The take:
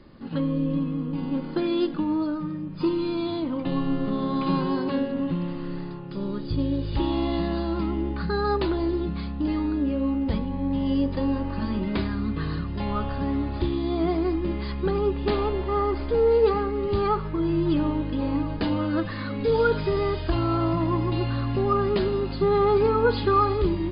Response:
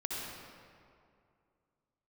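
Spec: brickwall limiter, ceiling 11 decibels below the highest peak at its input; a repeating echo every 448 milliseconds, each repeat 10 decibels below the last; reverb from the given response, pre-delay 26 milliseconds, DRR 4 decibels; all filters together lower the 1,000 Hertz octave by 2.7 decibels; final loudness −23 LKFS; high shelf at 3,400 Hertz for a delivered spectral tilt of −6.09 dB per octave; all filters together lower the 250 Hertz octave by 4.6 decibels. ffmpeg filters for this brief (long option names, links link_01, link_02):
-filter_complex "[0:a]equalizer=frequency=250:width_type=o:gain=-6,equalizer=frequency=1000:width_type=o:gain=-3.5,highshelf=frequency=3400:gain=3,alimiter=limit=-22dB:level=0:latency=1,aecho=1:1:448|896|1344|1792:0.316|0.101|0.0324|0.0104,asplit=2[link_01][link_02];[1:a]atrim=start_sample=2205,adelay=26[link_03];[link_02][link_03]afir=irnorm=-1:irlink=0,volume=-7dB[link_04];[link_01][link_04]amix=inputs=2:normalize=0,volume=6dB"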